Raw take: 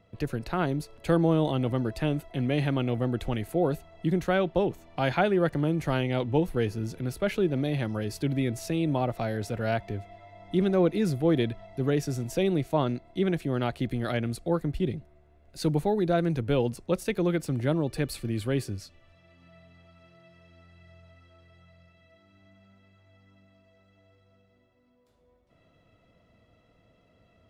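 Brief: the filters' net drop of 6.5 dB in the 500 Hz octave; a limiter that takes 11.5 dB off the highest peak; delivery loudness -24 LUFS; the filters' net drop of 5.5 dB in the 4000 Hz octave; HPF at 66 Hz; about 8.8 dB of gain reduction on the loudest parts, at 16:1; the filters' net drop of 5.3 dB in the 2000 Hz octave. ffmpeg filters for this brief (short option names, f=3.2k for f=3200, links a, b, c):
-af "highpass=66,equalizer=f=500:t=o:g=-8.5,equalizer=f=2k:t=o:g=-5.5,equalizer=f=4k:t=o:g=-5,acompressor=threshold=-31dB:ratio=16,volume=17.5dB,alimiter=limit=-14.5dB:level=0:latency=1"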